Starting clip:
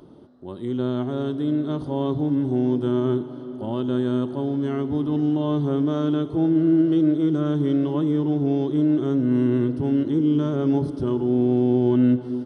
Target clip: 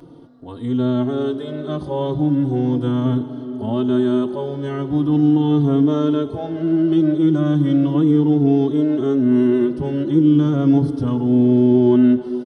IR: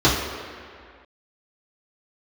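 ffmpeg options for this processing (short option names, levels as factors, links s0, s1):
-filter_complex "[0:a]asplit=2[s0][s1];[s1]adelay=3.7,afreqshift=-0.38[s2];[s0][s2]amix=inputs=2:normalize=1,volume=2.37"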